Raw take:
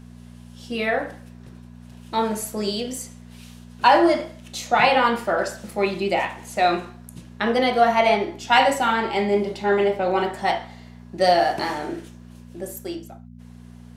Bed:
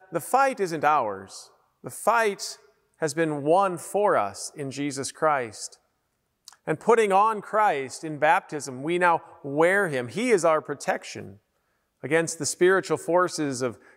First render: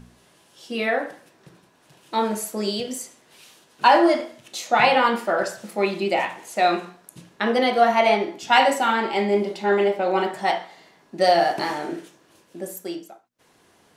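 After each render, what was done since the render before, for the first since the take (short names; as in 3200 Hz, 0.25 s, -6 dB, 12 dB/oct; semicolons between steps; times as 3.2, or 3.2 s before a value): de-hum 60 Hz, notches 4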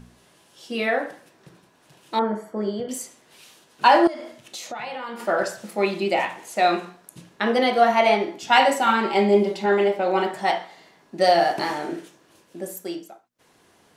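2.19–2.89 polynomial smoothing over 41 samples; 4.07–5.2 compressor 5:1, threshold -31 dBFS; 8.86–9.66 comb 5.2 ms, depth 58%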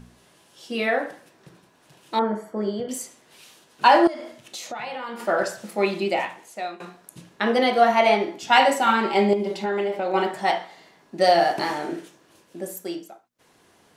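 5.98–6.8 fade out, to -22 dB; 9.33–10.14 compressor, threshold -21 dBFS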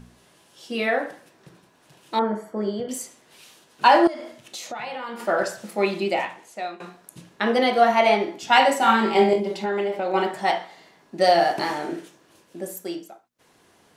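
6.21–6.85 high shelf 11000 Hz -7.5 dB; 8.78–9.4 flutter echo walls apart 3.9 m, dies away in 0.3 s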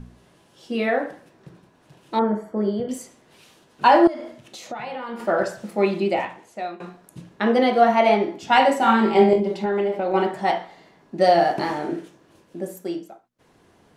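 tilt -2 dB/oct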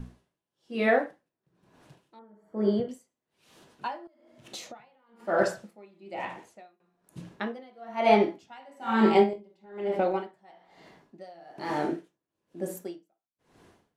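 wow and flutter 20 cents; dB-linear tremolo 1.1 Hz, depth 34 dB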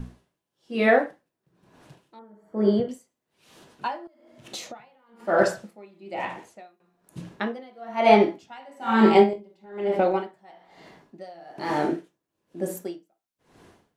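gain +4.5 dB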